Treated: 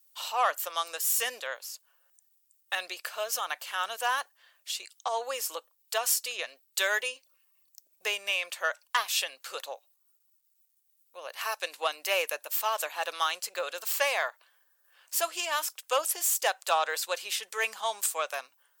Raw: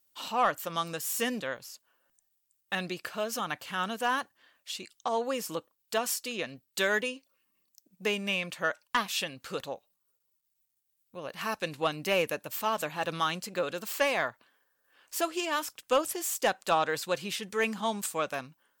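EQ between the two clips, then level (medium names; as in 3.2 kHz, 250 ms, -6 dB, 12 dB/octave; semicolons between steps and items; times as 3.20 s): high-pass 540 Hz 24 dB/octave; treble shelf 4.5 kHz +7.5 dB; 0.0 dB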